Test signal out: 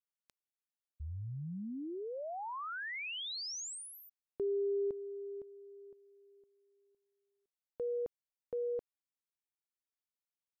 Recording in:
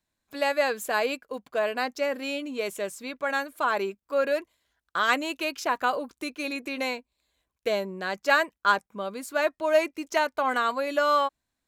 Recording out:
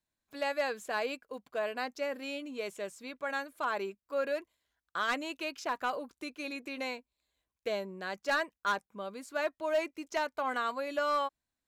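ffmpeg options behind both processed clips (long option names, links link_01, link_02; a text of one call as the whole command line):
ffmpeg -i in.wav -filter_complex "[0:a]acrossover=split=8600[link_01][link_02];[link_02]acompressor=threshold=-54dB:ratio=4:attack=1:release=60[link_03];[link_01][link_03]amix=inputs=2:normalize=0,volume=16dB,asoftclip=hard,volume=-16dB,volume=-7.5dB" out.wav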